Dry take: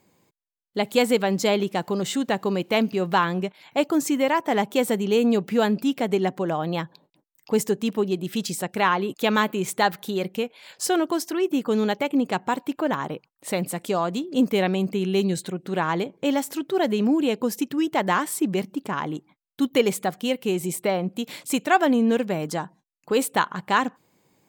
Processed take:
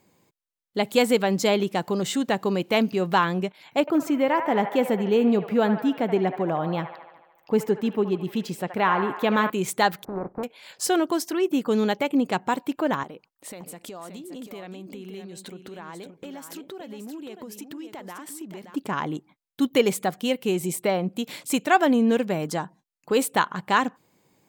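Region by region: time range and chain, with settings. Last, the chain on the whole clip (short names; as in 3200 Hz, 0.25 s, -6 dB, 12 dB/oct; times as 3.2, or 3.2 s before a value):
3.8–9.5 bell 8300 Hz -12.5 dB 2.2 oct + band-limited delay 74 ms, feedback 66%, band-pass 1200 Hz, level -7.5 dB
10.03–10.43 spectral contrast lowered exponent 0.37 + inverse Chebyshev low-pass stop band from 2900 Hz, stop band 50 dB
13.03–18.76 compressor 10:1, threshold -35 dBFS + bell 140 Hz -6 dB 0.58 oct + echo 0.574 s -8.5 dB
whole clip: dry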